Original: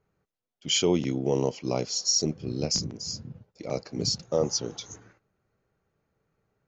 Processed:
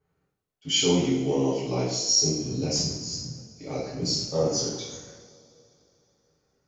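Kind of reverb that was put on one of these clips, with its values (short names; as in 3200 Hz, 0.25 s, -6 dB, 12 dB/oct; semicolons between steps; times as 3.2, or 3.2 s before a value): two-slope reverb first 0.73 s, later 3.2 s, from -21 dB, DRR -9.5 dB; gain -8 dB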